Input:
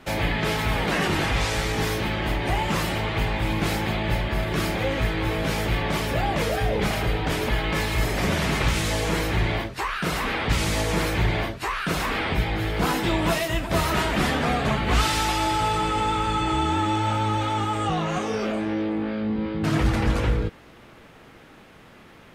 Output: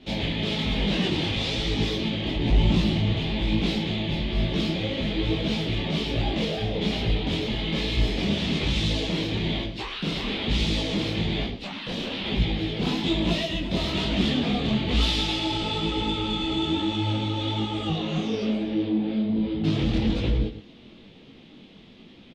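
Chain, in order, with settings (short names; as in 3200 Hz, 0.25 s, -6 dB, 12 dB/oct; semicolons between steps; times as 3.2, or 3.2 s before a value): 2.36–3.18 low shelf 190 Hz +12 dB; 11.44–12.23 ring modulator 130 Hz -> 670 Hz; EQ curve 140 Hz 0 dB, 210 Hz +8 dB, 1500 Hz -12 dB, 3500 Hz +9 dB, 11000 Hz -20 dB; soft clip -12.5 dBFS, distortion -20 dB; flange 0.35 Hz, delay 0.4 ms, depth 7.7 ms, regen -83%; outdoor echo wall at 18 m, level -12 dB; detuned doubles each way 39 cents; gain +5.5 dB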